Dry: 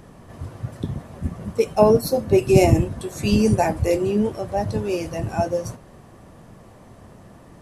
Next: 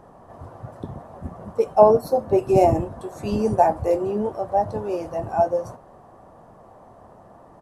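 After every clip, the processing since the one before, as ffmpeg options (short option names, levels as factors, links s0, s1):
-af "firequalizer=gain_entry='entry(150,0);entry(750,14);entry(2200,-4)':delay=0.05:min_phase=1,volume=0.398"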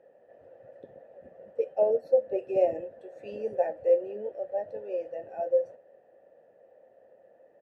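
-filter_complex "[0:a]asplit=3[s0][s1][s2];[s0]bandpass=f=530:t=q:w=8,volume=1[s3];[s1]bandpass=f=1840:t=q:w=8,volume=0.501[s4];[s2]bandpass=f=2480:t=q:w=8,volume=0.355[s5];[s3][s4][s5]amix=inputs=3:normalize=0"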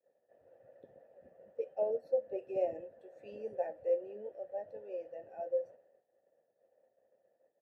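-af "agate=range=0.0224:threshold=0.00282:ratio=3:detection=peak,volume=0.355"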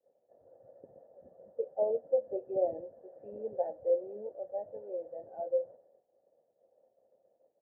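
-af "lowpass=f=1100:w=0.5412,lowpass=f=1100:w=1.3066,volume=1.41"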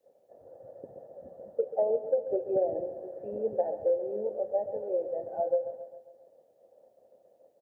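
-filter_complex "[0:a]acompressor=threshold=0.0251:ratio=6,asplit=2[s0][s1];[s1]aecho=0:1:136|272|408|544|680|816:0.251|0.138|0.076|0.0418|0.023|0.0126[s2];[s0][s2]amix=inputs=2:normalize=0,volume=2.66"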